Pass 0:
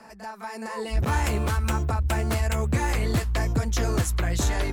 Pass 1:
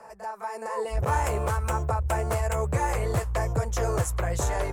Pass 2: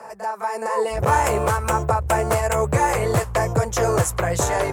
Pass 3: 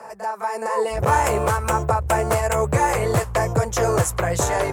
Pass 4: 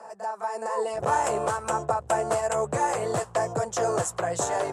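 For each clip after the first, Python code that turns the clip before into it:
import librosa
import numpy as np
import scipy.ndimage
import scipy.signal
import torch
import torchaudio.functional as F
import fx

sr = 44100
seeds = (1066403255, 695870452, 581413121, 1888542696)

y1 = fx.graphic_eq(x, sr, hz=(125, 250, 500, 1000, 4000, 8000), db=(6, -12, 11, 6, -7, 5))
y1 = y1 * librosa.db_to_amplitude(-4.5)
y2 = scipy.signal.sosfilt(scipy.signal.butter(2, 110.0, 'highpass', fs=sr, output='sos'), y1)
y2 = y2 * librosa.db_to_amplitude(8.5)
y3 = y2
y4 = fx.cabinet(y3, sr, low_hz=170.0, low_slope=12, high_hz=9900.0, hz=(710.0, 2200.0, 7800.0), db=(5, -7, 4))
y4 = y4 * librosa.db_to_amplitude(-6.5)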